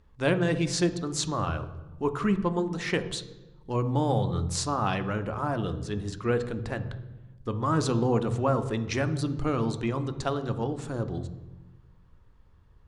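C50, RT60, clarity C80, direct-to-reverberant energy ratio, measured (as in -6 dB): 12.5 dB, 1.1 s, 15.0 dB, 10.0 dB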